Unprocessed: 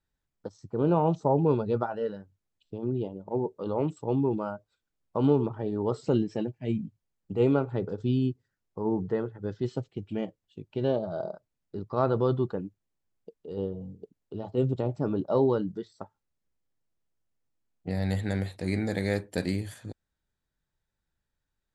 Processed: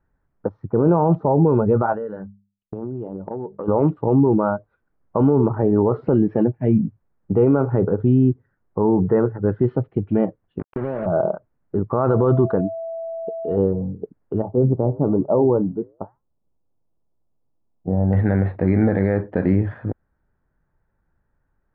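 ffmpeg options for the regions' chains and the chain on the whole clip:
-filter_complex "[0:a]asettb=1/sr,asplit=3[s0][s1][s2];[s0]atrim=end=1.934[s3];[s1]atrim=start=1.93:end=3.68,asetpts=PTS-STARTPTS,afade=t=in:d=0.004:c=qsin,afade=t=out:st=1.746:d=0.004:c=qsin,agate=range=0.0224:threshold=0.002:ratio=3:release=100:detection=peak,bandreject=f=50:t=h:w=6,bandreject=f=100:t=h:w=6,bandreject=f=150:t=h:w=6,bandreject=f=200:t=h:w=6,acompressor=threshold=0.0112:ratio=10:attack=3.2:release=140:knee=1:detection=peak[s4];[s2]atrim=start=3.676[s5];[s3][s4]acrossfade=d=0.004:c1=hsin:c2=qsin[s6];[s6][s5]acrossfade=d=0.004:c1=qsin:c2=hsin,asettb=1/sr,asplit=3[s7][s8][s9];[s7]atrim=end=10.594[s10];[s8]atrim=start=10.59:end=11.06,asetpts=PTS-STARTPTS,afade=t=in:d=0.004:c=qsin,afade=t=out:st=0.466:d=0.004:c=qsin,highpass=f=100:w=0.5412,highpass=f=100:w=1.3066,acompressor=threshold=0.0178:ratio=12:attack=3.2:release=140:knee=1:detection=peak,acrusher=bits=6:mix=0:aa=0.5[s11];[s9]atrim=start=11.056[s12];[s10][s11]acrossfade=d=0.004:c1=hsin:c2=qsin[s13];[s13][s12]acrossfade=d=0.004:c1=qsin:c2=hsin,asettb=1/sr,asplit=3[s14][s15][s16];[s14]atrim=end=12.034[s17];[s15]atrim=start=12.03:end=13.56,asetpts=PTS-STARTPTS,afade=t=in:d=0.004:c=qsin,afade=t=out:st=1.526:d=0.004:c=qsin,highshelf=f=3100:g=9,aeval=exprs='val(0)+0.00891*sin(2*PI*660*n/s)':c=same[s18];[s16]atrim=start=13.556[s19];[s17][s18]acrossfade=d=0.004:c1=hsin:c2=qsin[s20];[s20][s19]acrossfade=d=0.004:c1=qsin:c2=hsin,asettb=1/sr,asplit=3[s21][s22][s23];[s21]atrim=end=14.424[s24];[s22]atrim=start=14.42:end=18.13,asetpts=PTS-STARTPTS,afade=t=in:d=0.004:c=qsin,afade=t=out:st=3.706:d=0.004:c=qsin,lowpass=f=1000:w=0.5412,lowpass=f=1000:w=1.3066,flanger=delay=3.2:depth=6.4:regen=-88:speed=1.1:shape=sinusoidal[s25];[s23]atrim=start=18.126[s26];[s24][s25]acrossfade=d=0.004:c1=hsin:c2=qsin[s27];[s27][s26]acrossfade=d=0.004:c1=qsin:c2=hsin,lowpass=f=1600:w=0.5412,lowpass=f=1600:w=1.3066,alimiter=level_in=11.2:limit=0.891:release=50:level=0:latency=1,volume=0.473"

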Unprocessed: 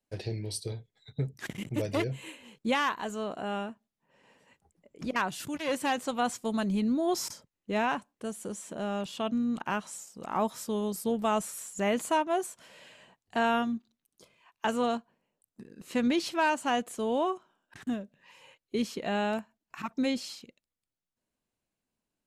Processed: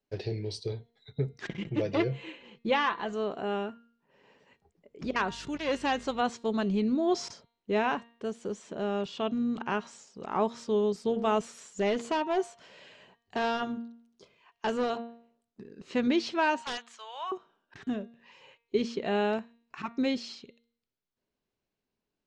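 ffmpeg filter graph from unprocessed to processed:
-filter_complex "[0:a]asettb=1/sr,asplit=3[s0][s1][s2];[s0]atrim=end=1.474[s3];[s1]atrim=start=1.47:end=3.13,asetpts=PTS-STARTPTS,afade=t=in:d=0.004:c=qsin,afade=t=out:st=1.656:d=0.004:c=qsin,lowpass=4800,aecho=1:1:5.9:0.46,atrim=end_sample=73206[s4];[s2]atrim=start=3.126[s5];[s3][s4]acrossfade=d=0.004:c1=hsin:c2=qsin[s6];[s6][s5]acrossfade=d=0.004:c1=qsin:c2=hsin,asettb=1/sr,asplit=3[s7][s8][s9];[s7]atrim=end=5.034[s10];[s8]atrim=start=5.03:end=6.22,asetpts=PTS-STARTPTS,afade=t=in:d=0.004:c=qsin,afade=t=out:st=1.186:d=0.004:c=qsin,equalizer=f=11000:t=o:w=1.7:g=3.5,aeval=exprs='val(0)+0.00224*(sin(2*PI*50*n/s)+sin(2*PI*2*50*n/s)/2+sin(2*PI*3*50*n/s)/3+sin(2*PI*4*50*n/s)/4+sin(2*PI*5*50*n/s)/5)':c=same[s11];[s9]atrim=start=6.216[s12];[s10][s11]acrossfade=d=0.004:c1=hsin:c2=qsin[s13];[s13][s12]acrossfade=d=0.004:c1=qsin:c2=hsin,asettb=1/sr,asplit=3[s14][s15][s16];[s14]atrim=end=11.434[s17];[s15]atrim=start=11.43:end=14.9,asetpts=PTS-STARTPTS,afade=t=in:d=0.004:c=qsin,afade=t=out:st=3.466:d=0.004:c=qsin,highshelf=f=11000:g=8,volume=17.8,asoftclip=hard,volume=0.0562[s18];[s16]atrim=start=14.896[s19];[s17][s18]acrossfade=d=0.004:c1=hsin:c2=qsin[s20];[s20][s19]acrossfade=d=0.004:c1=qsin:c2=hsin,asettb=1/sr,asplit=3[s21][s22][s23];[s21]atrim=end=16.624[s24];[s22]atrim=start=16.62:end=17.32,asetpts=PTS-STARTPTS,afade=t=in:d=0.004:c=qsin,afade=t=out:st=0.696:d=0.004:c=qsin,highpass=f=990:w=0.5412,highpass=f=990:w=1.3066,aeval=exprs='(mod(20*val(0)+1,2)-1)/20':c=same[s25];[s23]atrim=start=17.316[s26];[s24][s25]acrossfade=d=0.004:c1=hsin:c2=qsin[s27];[s27][s26]acrossfade=d=0.004:c1=qsin:c2=hsin,lowpass=f=5800:w=0.5412,lowpass=f=5800:w=1.3066,equalizer=f=410:w=5.6:g=8,bandreject=f=233.3:t=h:w=4,bandreject=f=466.6:t=h:w=4,bandreject=f=699.9:t=h:w=4,bandreject=f=933.2:t=h:w=4,bandreject=f=1166.5:t=h:w=4,bandreject=f=1399.8:t=h:w=4,bandreject=f=1633.1:t=h:w=4,bandreject=f=1866.4:t=h:w=4,bandreject=f=2099.7:t=h:w=4,bandreject=f=2333:t=h:w=4,bandreject=f=2566.3:t=h:w=4,bandreject=f=2799.6:t=h:w=4,bandreject=f=3032.9:t=h:w=4,bandreject=f=3266.2:t=h:w=4,bandreject=f=3499.5:t=h:w=4,bandreject=f=3732.8:t=h:w=4,bandreject=f=3966.1:t=h:w=4,bandreject=f=4199.4:t=h:w=4"

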